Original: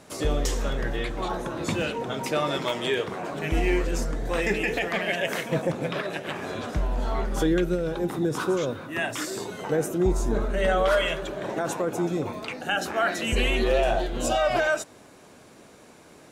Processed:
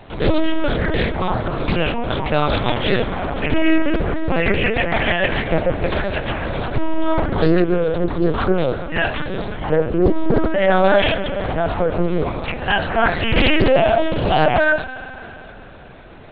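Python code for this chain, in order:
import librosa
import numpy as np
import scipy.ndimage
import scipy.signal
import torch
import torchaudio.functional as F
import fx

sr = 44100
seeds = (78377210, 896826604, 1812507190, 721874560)

y = fx.cheby_harmonics(x, sr, harmonics=(5,), levels_db=(-25,), full_scale_db=-12.5)
y = fx.rev_spring(y, sr, rt60_s=3.4, pass_ms=(44,), chirp_ms=65, drr_db=11.5)
y = fx.lpc_vocoder(y, sr, seeds[0], excitation='pitch_kept', order=8)
y = fx.doppler_dist(y, sr, depth_ms=0.49)
y = F.gain(torch.from_numpy(y), 7.5).numpy()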